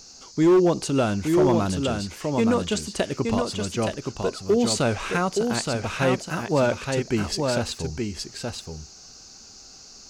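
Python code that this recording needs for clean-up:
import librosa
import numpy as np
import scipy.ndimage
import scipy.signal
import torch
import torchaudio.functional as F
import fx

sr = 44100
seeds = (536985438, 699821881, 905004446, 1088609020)

y = fx.fix_declip(x, sr, threshold_db=-13.0)
y = fx.noise_reduce(y, sr, print_start_s=9.37, print_end_s=9.87, reduce_db=22.0)
y = fx.fix_echo_inverse(y, sr, delay_ms=871, level_db=-4.5)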